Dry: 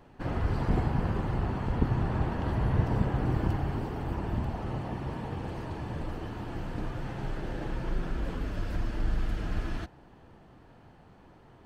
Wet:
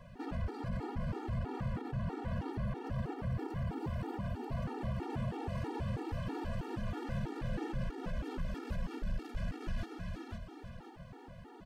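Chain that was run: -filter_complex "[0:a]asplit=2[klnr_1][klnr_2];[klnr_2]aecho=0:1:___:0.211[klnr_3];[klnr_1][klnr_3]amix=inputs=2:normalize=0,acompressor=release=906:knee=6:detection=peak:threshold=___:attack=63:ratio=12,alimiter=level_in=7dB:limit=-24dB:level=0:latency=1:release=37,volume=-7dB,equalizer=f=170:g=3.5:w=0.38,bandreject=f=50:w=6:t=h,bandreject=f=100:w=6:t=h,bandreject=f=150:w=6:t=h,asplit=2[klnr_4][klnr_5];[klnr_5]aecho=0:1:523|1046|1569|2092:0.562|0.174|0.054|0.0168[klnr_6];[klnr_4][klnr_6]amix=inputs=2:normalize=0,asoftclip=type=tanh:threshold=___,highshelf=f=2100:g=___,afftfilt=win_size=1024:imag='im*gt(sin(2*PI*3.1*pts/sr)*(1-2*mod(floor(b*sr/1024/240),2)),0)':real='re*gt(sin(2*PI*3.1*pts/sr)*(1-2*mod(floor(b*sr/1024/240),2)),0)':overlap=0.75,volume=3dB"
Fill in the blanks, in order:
318, -31dB, -30.5dB, 2.5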